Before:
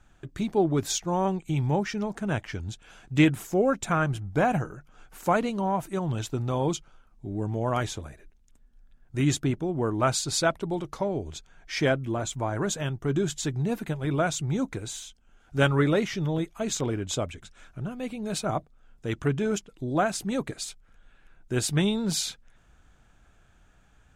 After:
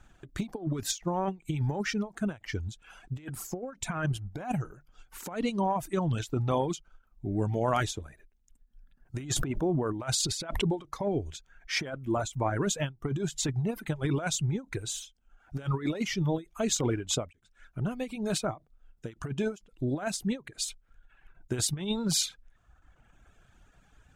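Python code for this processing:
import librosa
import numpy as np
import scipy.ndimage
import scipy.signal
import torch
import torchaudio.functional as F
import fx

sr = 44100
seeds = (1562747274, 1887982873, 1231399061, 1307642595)

y = fx.pre_swell(x, sr, db_per_s=23.0, at=(9.17, 10.75), fade=0.02)
y = fx.edit(y, sr, fx.fade_in_from(start_s=17.33, length_s=0.49, floor_db=-22.5), tone=tone)
y = fx.dereverb_blind(y, sr, rt60_s=1.1)
y = fx.over_compress(y, sr, threshold_db=-28.0, ratio=-0.5)
y = fx.end_taper(y, sr, db_per_s=260.0)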